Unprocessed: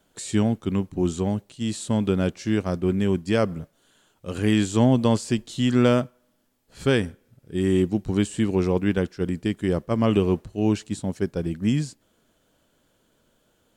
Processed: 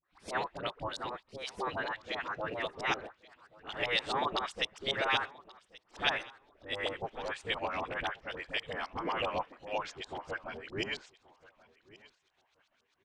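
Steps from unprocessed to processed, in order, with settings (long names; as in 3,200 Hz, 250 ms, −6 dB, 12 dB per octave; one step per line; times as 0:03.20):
gliding playback speed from 122% → 89%
auto-filter low-pass saw up 7.6 Hz 610–5,000 Hz
gate on every frequency bin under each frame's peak −15 dB weak
all-pass dispersion highs, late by 46 ms, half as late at 860 Hz
on a send: repeating echo 1,129 ms, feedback 19%, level −21.5 dB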